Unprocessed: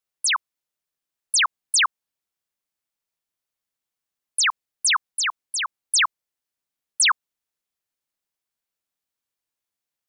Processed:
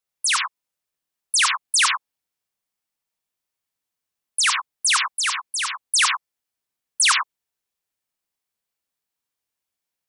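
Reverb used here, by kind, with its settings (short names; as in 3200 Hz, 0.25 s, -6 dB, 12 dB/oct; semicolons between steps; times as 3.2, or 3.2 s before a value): non-linear reverb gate 0.12 s rising, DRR 2.5 dB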